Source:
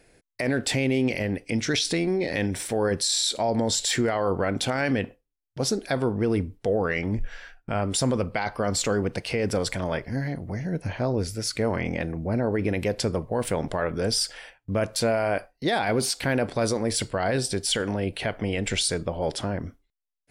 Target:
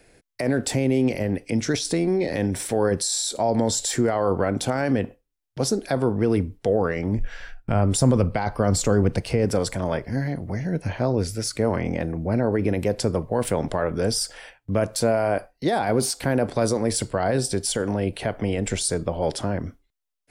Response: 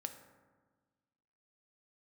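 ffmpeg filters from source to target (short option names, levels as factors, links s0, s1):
-filter_complex "[0:a]asettb=1/sr,asplit=3[s0][s1][s2];[s0]atrim=end=7.404[s3];[s1]atrim=start=7.4:end=9.45,asetpts=PTS-STARTPTS,afade=t=in:d=0.004:c=qsin,afade=t=out:st=2.046:d=0.004:c=qsin,lowshelf=f=140:g=10.5[s4];[s2]atrim=start=9.446[s5];[s3][s4]acrossfade=d=0.004:c1=hsin:c2=qsin[s6];[s6][s5]acrossfade=d=0.004:c1=qsin:c2=hsin,acrossover=split=220|1400|5300[s7][s8][s9][s10];[s9]acompressor=threshold=0.00794:ratio=6[s11];[s7][s8][s11][s10]amix=inputs=4:normalize=0,volume=1.41"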